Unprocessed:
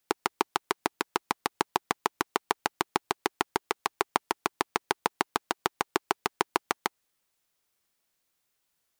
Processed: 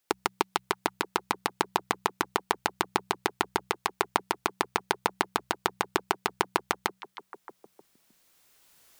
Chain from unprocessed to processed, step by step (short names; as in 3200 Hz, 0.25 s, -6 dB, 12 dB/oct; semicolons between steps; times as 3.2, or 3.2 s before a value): recorder AGC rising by 8.7 dB/s; de-hum 62.88 Hz, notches 3; on a send: delay with a stepping band-pass 0.311 s, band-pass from 3100 Hz, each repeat -1.4 oct, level -12 dB